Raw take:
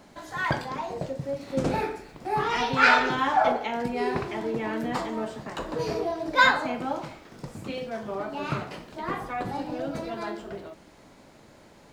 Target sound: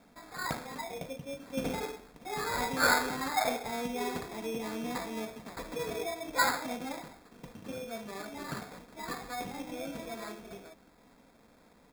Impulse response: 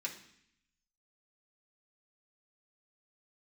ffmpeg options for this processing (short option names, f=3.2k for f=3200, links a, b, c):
-af "aecho=1:1:4.2:0.48,acrusher=samples=15:mix=1:aa=0.000001,volume=-9dB"